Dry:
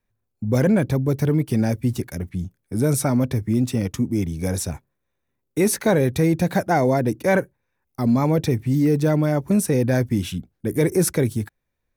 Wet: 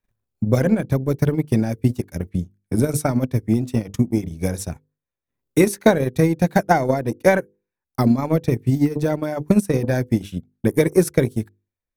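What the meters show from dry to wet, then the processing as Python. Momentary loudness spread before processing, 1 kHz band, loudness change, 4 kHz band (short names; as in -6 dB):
11 LU, +2.5 dB, +1.0 dB, -1.5 dB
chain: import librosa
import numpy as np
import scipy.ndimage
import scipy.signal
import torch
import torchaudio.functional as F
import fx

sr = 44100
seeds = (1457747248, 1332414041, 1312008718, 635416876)

y = fx.hum_notches(x, sr, base_hz=50, count=10)
y = fx.transient(y, sr, attack_db=11, sustain_db=-11)
y = y * librosa.db_to_amplitude(-2.0)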